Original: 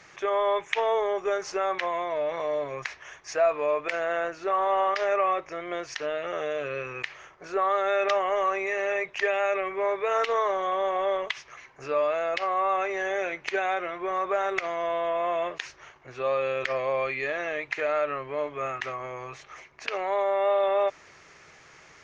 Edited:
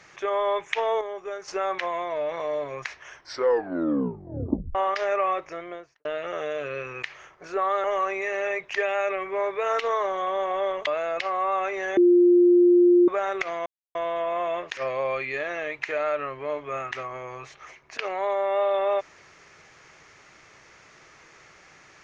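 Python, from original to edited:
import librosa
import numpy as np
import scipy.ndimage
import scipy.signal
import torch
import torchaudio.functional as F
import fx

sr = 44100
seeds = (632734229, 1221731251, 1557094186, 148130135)

y = fx.studio_fade_out(x, sr, start_s=5.49, length_s=0.56)
y = fx.edit(y, sr, fx.clip_gain(start_s=1.01, length_s=0.47, db=-7.0),
    fx.tape_stop(start_s=3.07, length_s=1.68),
    fx.cut(start_s=7.84, length_s=0.45),
    fx.cut(start_s=11.32, length_s=0.72),
    fx.bleep(start_s=13.14, length_s=1.11, hz=352.0, db=-13.0),
    fx.insert_silence(at_s=14.83, length_s=0.29),
    fx.cut(start_s=15.65, length_s=1.01), tone=tone)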